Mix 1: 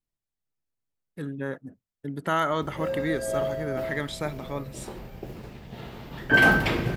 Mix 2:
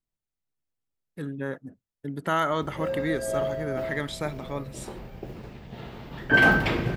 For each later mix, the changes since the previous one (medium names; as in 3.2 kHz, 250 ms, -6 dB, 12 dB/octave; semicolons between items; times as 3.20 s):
background: add peaking EQ 12 kHz -7 dB 1.5 oct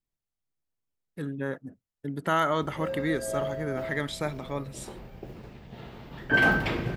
background -3.5 dB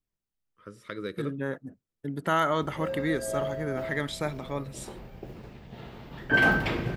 first voice: unmuted